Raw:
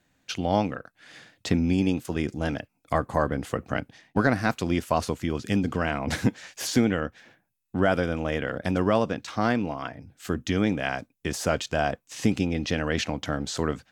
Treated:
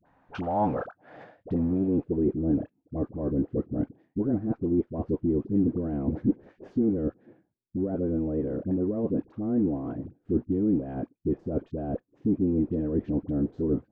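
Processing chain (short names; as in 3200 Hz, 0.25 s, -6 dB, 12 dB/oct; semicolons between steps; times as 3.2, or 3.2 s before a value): reverse; compressor 10:1, threshold -30 dBFS, peak gain reduction 15 dB; reverse; added harmonics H 3 -34 dB, 5 -24 dB, 8 -32 dB, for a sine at -16 dBFS; in parallel at -3.5 dB: bit-crush 6-bit; on the sum: low-pass sweep 930 Hz -> 350 Hz, 0.54–2.42; dispersion highs, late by 59 ms, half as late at 700 Hz; mismatched tape noise reduction encoder only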